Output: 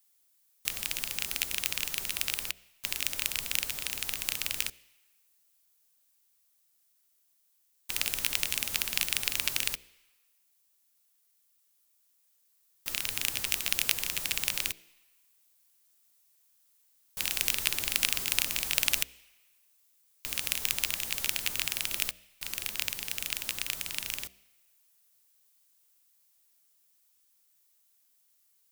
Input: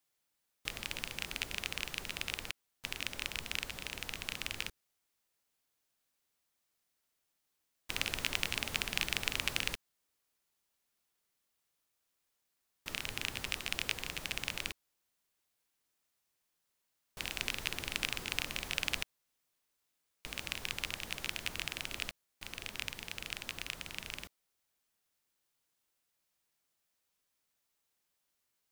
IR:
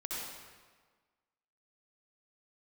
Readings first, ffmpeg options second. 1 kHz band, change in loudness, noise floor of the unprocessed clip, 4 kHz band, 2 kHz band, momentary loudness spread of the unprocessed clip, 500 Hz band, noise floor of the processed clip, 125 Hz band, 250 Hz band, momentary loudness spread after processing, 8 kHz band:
+1.0 dB, +8.0 dB, −82 dBFS, +5.5 dB, +3.5 dB, 9 LU, −0.5 dB, −71 dBFS, −1.0 dB, −1.0 dB, 8 LU, +12.0 dB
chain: -filter_complex "[0:a]acrusher=bits=2:mode=log:mix=0:aa=0.000001,bandreject=frequency=63.44:width_type=h:width=4,bandreject=frequency=126.88:width_type=h:width=4,bandreject=frequency=190.32:width_type=h:width=4,bandreject=frequency=253.76:width_type=h:width=4,bandreject=frequency=317.2:width_type=h:width=4,bandreject=frequency=380.64:width_type=h:width=4,bandreject=frequency=444.08:width_type=h:width=4,bandreject=frequency=507.52:width_type=h:width=4,bandreject=frequency=570.96:width_type=h:width=4,bandreject=frequency=634.4:width_type=h:width=4,bandreject=frequency=697.84:width_type=h:width=4,asplit=2[link_01][link_02];[link_02]equalizer=frequency=73:width=0.35:gain=-14.5[link_03];[1:a]atrim=start_sample=2205[link_04];[link_03][link_04]afir=irnorm=-1:irlink=0,volume=-24.5dB[link_05];[link_01][link_05]amix=inputs=2:normalize=0,crystalizer=i=3:c=0,dynaudnorm=framelen=320:gausssize=21:maxgain=11.5dB,volume=-1dB"

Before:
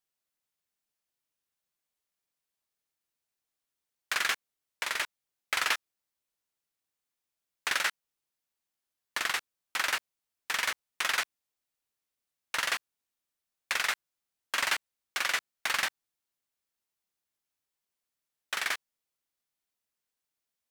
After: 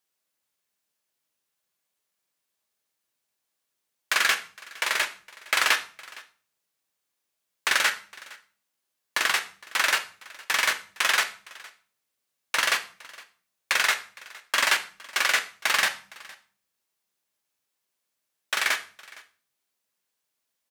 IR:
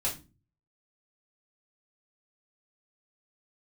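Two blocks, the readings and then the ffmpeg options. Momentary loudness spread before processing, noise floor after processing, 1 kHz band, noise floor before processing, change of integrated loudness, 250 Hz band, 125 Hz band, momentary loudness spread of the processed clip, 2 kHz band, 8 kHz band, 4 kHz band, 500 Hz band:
8 LU, −81 dBFS, +6.5 dB, below −85 dBFS, +7.0 dB, +5.5 dB, can't be measured, 20 LU, +7.0 dB, +7.0 dB, +7.0 dB, +7.5 dB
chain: -filter_complex "[0:a]highpass=frequency=150:poles=1,aecho=1:1:462:0.0794,asplit=2[link_01][link_02];[1:a]atrim=start_sample=2205,asetrate=28665,aresample=44100[link_03];[link_02][link_03]afir=irnorm=-1:irlink=0,volume=-14.5dB[link_04];[link_01][link_04]amix=inputs=2:normalize=0,volume=5dB"

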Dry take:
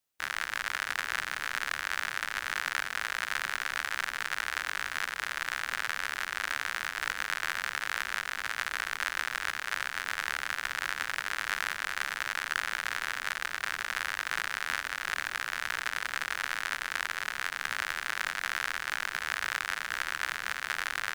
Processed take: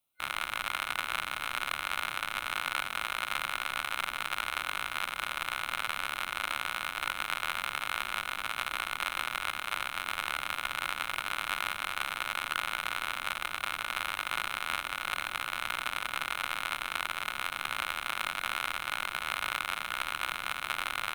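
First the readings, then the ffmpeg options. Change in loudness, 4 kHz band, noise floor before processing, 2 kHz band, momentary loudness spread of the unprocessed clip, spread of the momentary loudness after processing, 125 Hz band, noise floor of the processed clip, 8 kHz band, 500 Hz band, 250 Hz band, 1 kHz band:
−0.5 dB, +1.5 dB, −41 dBFS, −3.0 dB, 1 LU, 1 LU, +2.5 dB, −42 dBFS, −2.5 dB, +1.5 dB, +2.5 dB, +2.5 dB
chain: -af "superequalizer=7b=0.562:11b=0.282:14b=0.316:15b=0.355,volume=2.5dB"

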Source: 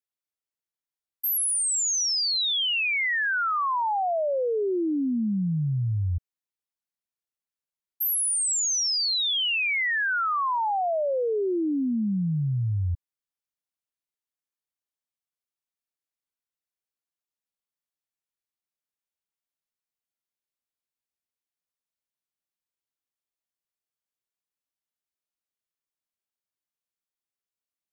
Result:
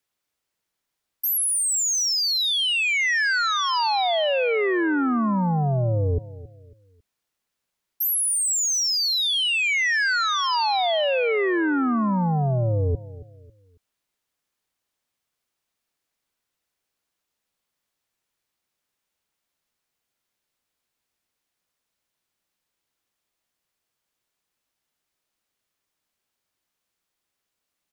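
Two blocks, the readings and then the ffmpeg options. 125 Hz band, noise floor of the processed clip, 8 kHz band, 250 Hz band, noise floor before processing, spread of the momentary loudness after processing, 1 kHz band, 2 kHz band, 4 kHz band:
+3.0 dB, −82 dBFS, +2.5 dB, +3.0 dB, below −85 dBFS, 4 LU, +3.0 dB, +4.0 dB, +4.0 dB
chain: -filter_complex "[0:a]highshelf=frequency=7000:gain=-5.5,acrossover=split=230|1200[link_01][link_02][link_03];[link_03]alimiter=level_in=8.5dB:limit=-24dB:level=0:latency=1,volume=-8.5dB[link_04];[link_01][link_02][link_04]amix=inputs=3:normalize=0,aeval=exprs='0.0794*(cos(1*acos(clip(val(0)/0.0794,-1,1)))-cos(1*PI/2))+0.0355*(cos(5*acos(clip(val(0)/0.0794,-1,1)))-cos(5*PI/2))':channel_layout=same,asplit=2[link_05][link_06];[link_06]adelay=274,lowpass=frequency=4100:poles=1,volume=-17dB,asplit=2[link_07][link_08];[link_08]adelay=274,lowpass=frequency=4100:poles=1,volume=0.35,asplit=2[link_09][link_10];[link_10]adelay=274,lowpass=frequency=4100:poles=1,volume=0.35[link_11];[link_05][link_07][link_09][link_11]amix=inputs=4:normalize=0,volume=4dB"

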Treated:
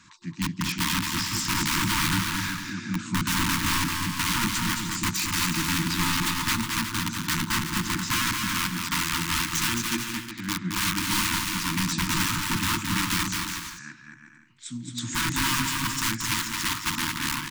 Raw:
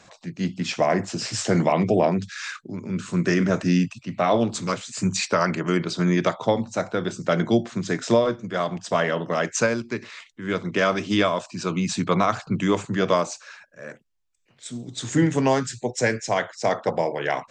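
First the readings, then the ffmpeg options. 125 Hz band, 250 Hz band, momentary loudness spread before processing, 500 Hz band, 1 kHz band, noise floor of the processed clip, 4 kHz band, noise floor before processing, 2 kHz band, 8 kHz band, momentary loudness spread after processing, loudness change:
−3.5 dB, −5.5 dB, 12 LU, below −20 dB, −3.5 dB, −48 dBFS, +6.5 dB, −59 dBFS, +2.0 dB, +6.0 dB, 8 LU, −2.0 dB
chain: -af "aeval=exprs='(mod(8.41*val(0)+1,2)-1)/8.41':channel_layout=same,aecho=1:1:220|363|456|516.4|555.6:0.631|0.398|0.251|0.158|0.1,afftfilt=real='re*(1-between(b*sr/4096,350,880))':imag='im*(1-between(b*sr/4096,350,880))':win_size=4096:overlap=0.75,volume=-1.5dB"

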